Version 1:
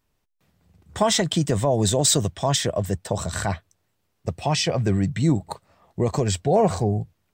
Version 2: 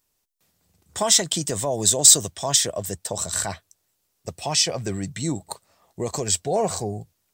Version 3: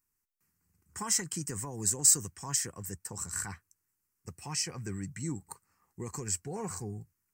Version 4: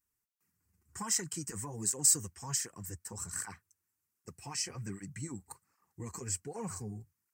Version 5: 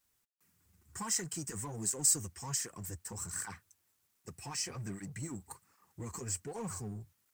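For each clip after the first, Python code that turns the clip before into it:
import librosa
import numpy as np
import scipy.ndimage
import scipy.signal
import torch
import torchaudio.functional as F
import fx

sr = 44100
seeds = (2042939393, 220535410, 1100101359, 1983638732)

y1 = fx.bass_treble(x, sr, bass_db=-6, treble_db=13)
y1 = F.gain(torch.from_numpy(y1), -3.5).numpy()
y2 = fx.fixed_phaser(y1, sr, hz=1500.0, stages=4)
y2 = F.gain(torch.from_numpy(y2), -7.5).numpy()
y3 = fx.flanger_cancel(y2, sr, hz=1.3, depth_ms=7.9)
y4 = fx.law_mismatch(y3, sr, coded='mu')
y4 = F.gain(torch.from_numpy(y4), -3.0).numpy()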